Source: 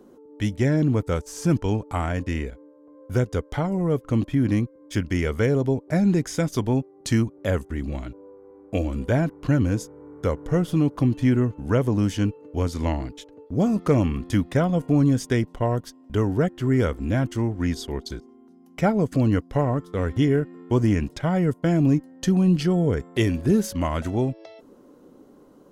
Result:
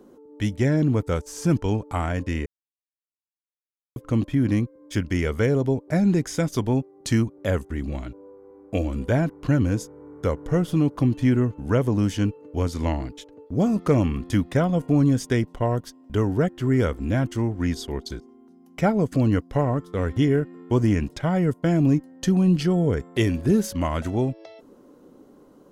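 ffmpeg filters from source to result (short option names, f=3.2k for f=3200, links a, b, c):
-filter_complex "[0:a]asplit=3[a][b][c];[a]atrim=end=2.46,asetpts=PTS-STARTPTS,afade=t=out:st=2.456:d=0.004:c=hsin[d];[b]atrim=start=2.46:end=3.96,asetpts=PTS-STARTPTS,volume=0[e];[c]atrim=start=3.96,asetpts=PTS-STARTPTS,afade=t=in:d=0.004:c=hsin[f];[d][e][f]concat=n=3:v=0:a=1"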